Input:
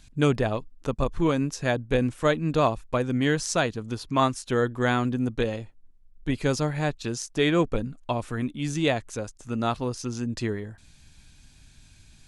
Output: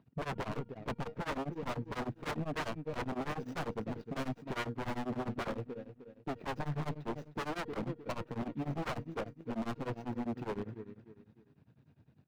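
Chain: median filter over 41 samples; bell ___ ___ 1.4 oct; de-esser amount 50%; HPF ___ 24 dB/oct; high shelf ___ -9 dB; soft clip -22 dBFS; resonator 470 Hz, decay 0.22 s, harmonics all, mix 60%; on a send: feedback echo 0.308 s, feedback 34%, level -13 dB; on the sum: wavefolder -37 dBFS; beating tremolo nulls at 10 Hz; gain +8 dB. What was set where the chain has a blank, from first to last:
8600 Hz, -12.5 dB, 120 Hz, 6600 Hz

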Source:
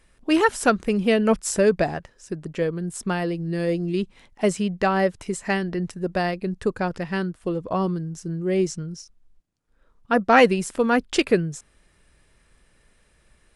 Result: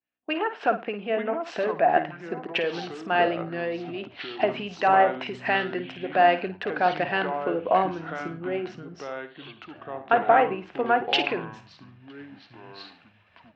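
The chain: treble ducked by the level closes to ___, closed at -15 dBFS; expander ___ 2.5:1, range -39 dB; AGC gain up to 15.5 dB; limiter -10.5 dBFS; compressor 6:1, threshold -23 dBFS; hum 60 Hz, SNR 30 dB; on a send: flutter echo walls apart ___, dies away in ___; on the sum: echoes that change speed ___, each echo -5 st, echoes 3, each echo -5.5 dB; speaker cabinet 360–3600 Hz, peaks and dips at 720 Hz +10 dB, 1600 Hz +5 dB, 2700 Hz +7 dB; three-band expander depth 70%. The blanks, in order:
1700 Hz, -54 dBFS, 9.2 m, 0.3 s, 0.788 s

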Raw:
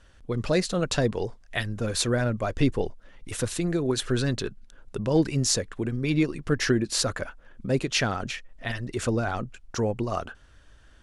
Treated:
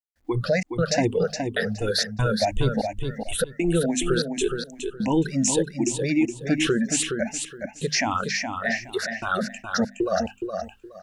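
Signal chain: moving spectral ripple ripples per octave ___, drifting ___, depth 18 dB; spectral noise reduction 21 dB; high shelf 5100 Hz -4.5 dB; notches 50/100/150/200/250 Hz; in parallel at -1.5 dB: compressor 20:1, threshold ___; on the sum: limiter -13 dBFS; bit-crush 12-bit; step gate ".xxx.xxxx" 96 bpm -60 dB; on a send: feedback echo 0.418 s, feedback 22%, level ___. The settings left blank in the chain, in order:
0.65, +2.7 Hz, -30 dBFS, -6 dB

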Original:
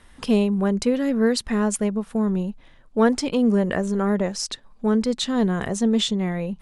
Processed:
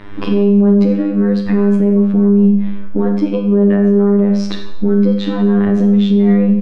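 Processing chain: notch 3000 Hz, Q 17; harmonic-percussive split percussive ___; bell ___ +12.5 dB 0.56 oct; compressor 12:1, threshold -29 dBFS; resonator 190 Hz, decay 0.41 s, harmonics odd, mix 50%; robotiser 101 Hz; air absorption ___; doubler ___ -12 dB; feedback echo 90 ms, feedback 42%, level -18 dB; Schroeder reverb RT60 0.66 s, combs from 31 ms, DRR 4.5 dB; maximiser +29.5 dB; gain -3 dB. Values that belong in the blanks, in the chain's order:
-5 dB, 320 Hz, 330 m, 25 ms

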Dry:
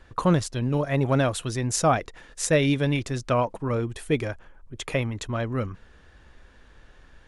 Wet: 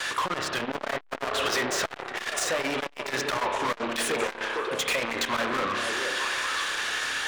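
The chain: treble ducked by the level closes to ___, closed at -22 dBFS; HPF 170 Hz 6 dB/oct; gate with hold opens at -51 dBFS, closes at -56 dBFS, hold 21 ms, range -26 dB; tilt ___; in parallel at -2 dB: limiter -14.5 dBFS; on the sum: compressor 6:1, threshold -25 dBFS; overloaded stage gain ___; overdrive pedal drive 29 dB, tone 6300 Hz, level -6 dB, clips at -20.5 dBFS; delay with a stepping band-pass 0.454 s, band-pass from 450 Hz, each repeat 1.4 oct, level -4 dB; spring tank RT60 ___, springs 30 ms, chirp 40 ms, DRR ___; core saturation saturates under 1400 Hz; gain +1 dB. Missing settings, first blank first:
1200 Hz, +4.5 dB/oct, 21 dB, 1.4 s, 4 dB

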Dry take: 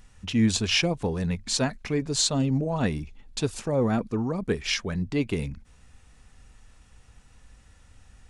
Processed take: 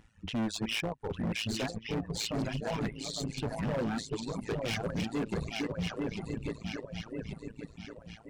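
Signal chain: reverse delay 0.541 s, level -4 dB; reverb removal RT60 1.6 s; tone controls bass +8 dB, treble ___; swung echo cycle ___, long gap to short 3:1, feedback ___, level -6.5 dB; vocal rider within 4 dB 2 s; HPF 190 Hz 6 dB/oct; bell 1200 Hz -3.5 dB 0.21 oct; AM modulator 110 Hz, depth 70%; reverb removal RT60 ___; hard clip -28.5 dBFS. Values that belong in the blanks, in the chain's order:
-9 dB, 1.134 s, 41%, 1.9 s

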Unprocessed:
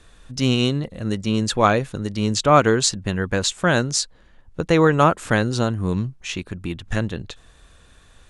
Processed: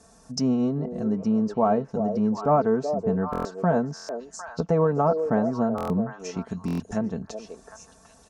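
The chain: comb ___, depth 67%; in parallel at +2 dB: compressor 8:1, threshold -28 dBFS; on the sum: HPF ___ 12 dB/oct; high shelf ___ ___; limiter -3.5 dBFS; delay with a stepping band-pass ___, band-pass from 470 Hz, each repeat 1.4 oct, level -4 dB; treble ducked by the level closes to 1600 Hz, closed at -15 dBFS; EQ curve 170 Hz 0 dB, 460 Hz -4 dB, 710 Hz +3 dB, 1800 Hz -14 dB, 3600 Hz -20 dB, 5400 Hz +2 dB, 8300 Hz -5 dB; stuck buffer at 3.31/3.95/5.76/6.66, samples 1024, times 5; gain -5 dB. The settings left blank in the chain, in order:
4.5 ms, 110 Hz, 8200 Hz, +7 dB, 0.377 s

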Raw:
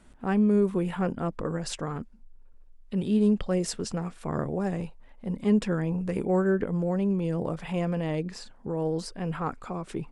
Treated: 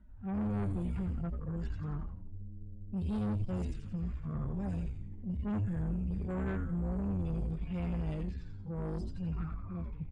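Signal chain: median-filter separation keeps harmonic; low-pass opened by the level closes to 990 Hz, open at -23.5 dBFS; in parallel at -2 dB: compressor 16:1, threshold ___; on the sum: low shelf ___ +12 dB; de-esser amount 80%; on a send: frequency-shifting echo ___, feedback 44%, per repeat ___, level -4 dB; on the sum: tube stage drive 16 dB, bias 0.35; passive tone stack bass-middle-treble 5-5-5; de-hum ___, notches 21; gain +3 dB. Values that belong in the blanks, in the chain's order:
-34 dBFS, 250 Hz, 86 ms, -110 Hz, 323.7 Hz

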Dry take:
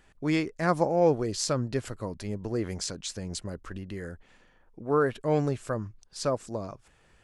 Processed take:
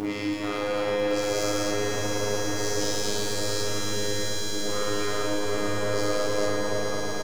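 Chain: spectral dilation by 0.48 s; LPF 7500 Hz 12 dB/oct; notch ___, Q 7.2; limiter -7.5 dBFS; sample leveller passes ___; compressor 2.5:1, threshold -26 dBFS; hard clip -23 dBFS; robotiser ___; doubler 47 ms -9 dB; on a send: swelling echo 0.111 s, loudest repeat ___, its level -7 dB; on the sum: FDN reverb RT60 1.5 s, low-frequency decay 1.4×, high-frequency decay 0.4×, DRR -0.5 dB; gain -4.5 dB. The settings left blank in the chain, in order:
1700 Hz, 2, 103 Hz, 8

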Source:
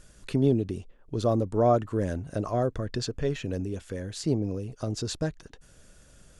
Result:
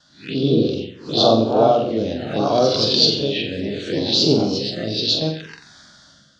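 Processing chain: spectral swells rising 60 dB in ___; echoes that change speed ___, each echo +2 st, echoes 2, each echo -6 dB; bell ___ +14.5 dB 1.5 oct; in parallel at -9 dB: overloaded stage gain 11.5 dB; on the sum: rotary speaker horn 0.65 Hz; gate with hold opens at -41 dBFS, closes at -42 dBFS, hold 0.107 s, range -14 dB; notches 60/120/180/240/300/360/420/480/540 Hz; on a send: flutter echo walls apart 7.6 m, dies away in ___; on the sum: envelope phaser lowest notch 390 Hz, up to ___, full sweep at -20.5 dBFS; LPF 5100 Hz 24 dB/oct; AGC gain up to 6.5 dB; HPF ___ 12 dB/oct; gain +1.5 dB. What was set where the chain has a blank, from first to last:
0.45 s, 0.123 s, 3900 Hz, 0.5 s, 1900 Hz, 190 Hz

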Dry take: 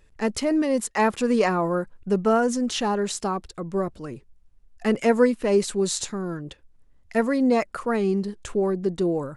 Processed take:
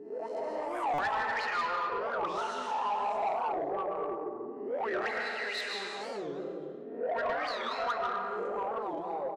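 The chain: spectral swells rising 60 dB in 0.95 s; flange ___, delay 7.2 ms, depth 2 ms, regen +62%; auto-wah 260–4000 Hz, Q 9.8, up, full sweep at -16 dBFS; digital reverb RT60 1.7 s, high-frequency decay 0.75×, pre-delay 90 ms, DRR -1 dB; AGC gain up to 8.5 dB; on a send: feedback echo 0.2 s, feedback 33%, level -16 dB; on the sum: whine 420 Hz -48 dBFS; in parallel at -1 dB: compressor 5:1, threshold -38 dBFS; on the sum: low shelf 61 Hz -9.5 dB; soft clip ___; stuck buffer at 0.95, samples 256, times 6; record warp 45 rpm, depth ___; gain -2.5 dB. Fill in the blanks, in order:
1.1 Hz, -23 dBFS, 250 cents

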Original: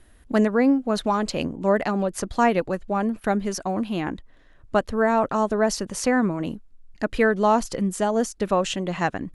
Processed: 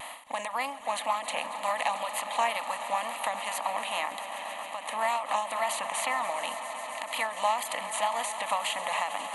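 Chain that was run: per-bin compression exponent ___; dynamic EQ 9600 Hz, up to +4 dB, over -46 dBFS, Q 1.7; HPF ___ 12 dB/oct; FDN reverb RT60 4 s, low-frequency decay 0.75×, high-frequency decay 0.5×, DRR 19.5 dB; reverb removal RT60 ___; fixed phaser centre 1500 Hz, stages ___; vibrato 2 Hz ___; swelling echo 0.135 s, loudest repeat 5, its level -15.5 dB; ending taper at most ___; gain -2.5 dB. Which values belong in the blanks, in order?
0.4, 920 Hz, 0.85 s, 6, 50 cents, 110 dB/s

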